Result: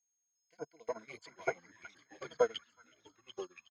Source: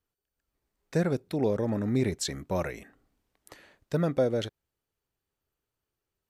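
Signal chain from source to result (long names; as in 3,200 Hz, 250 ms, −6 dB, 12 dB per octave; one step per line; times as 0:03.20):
source passing by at 0:02.76, 24 m/s, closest 20 metres
EQ curve with evenly spaced ripples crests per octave 1.8, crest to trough 17 dB
auto-filter band-pass saw up 2 Hz 790–4,600 Hz
tempo change 1.7×
steady tone 6,500 Hz −64 dBFS
delay with pitch and tempo change per echo 355 ms, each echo −4 semitones, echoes 3, each echo −6 dB
echo through a band-pass that steps 369 ms, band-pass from 1,600 Hz, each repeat 0.7 octaves, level −1 dB
expander for the loud parts 2.5 to 1, over −57 dBFS
level +14 dB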